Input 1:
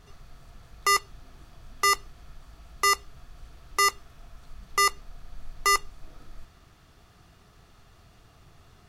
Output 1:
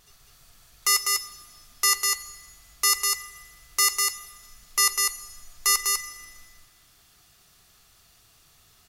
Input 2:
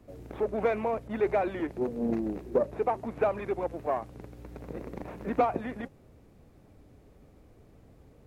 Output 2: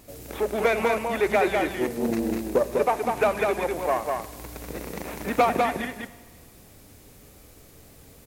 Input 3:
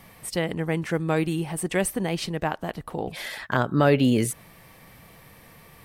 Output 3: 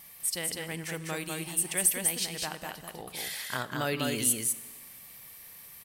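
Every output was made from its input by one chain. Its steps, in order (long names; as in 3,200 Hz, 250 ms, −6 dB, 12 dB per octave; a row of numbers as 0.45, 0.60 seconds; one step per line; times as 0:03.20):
first-order pre-emphasis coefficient 0.9
pitch vibrato 1.4 Hz 8.2 cents
on a send: single-tap delay 199 ms −3.5 dB
on the sum: four-comb reverb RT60 1.5 s, combs from 31 ms, DRR 15 dB
normalise the peak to −9 dBFS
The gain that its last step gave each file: +8.0, +22.0, +4.5 decibels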